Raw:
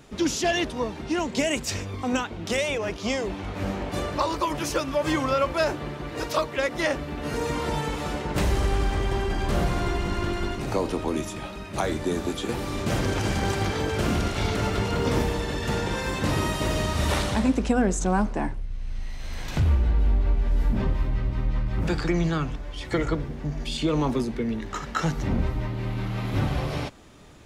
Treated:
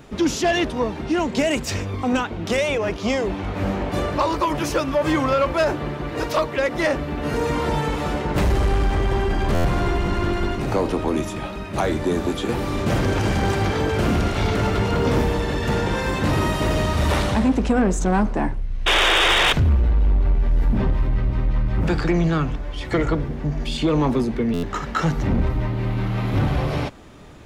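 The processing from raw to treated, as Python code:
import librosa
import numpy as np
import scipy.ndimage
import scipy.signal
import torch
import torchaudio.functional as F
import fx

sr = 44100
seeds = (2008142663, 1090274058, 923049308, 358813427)

y = fx.high_shelf(x, sr, hz=4600.0, db=-11.0)
y = fx.spec_paint(y, sr, seeds[0], shape='noise', start_s=18.86, length_s=0.67, low_hz=310.0, high_hz=3800.0, level_db=-21.0)
y = 10.0 ** (-18.0 / 20.0) * np.tanh(y / 10.0 ** (-18.0 / 20.0))
y = fx.high_shelf(y, sr, hz=12000.0, db=10.0)
y = fx.buffer_glitch(y, sr, at_s=(9.54, 24.53), block=512, repeats=8)
y = F.gain(torch.from_numpy(y), 6.5).numpy()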